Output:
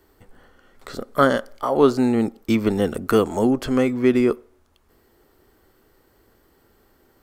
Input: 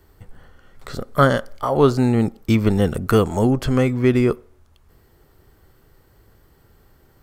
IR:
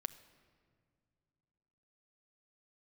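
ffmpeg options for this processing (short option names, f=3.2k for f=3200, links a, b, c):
-af "lowshelf=f=190:t=q:w=1.5:g=-7.5,volume=-1.5dB"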